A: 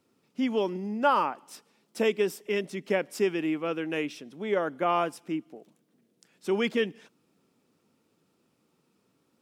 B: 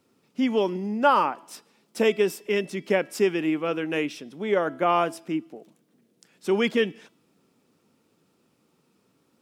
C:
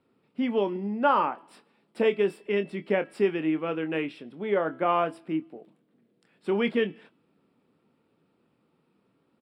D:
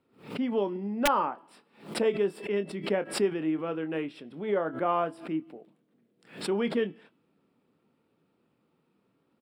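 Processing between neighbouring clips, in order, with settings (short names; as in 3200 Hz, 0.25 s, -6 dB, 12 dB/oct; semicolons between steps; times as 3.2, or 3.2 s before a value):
de-hum 329.5 Hz, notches 16; gain +4 dB
running mean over 7 samples; doubler 25 ms -11 dB; gain -2.5 dB
dynamic EQ 2400 Hz, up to -6 dB, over -47 dBFS, Q 1.7; wrapped overs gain 12.5 dB; backwards sustainer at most 140 dB/s; gain -2.5 dB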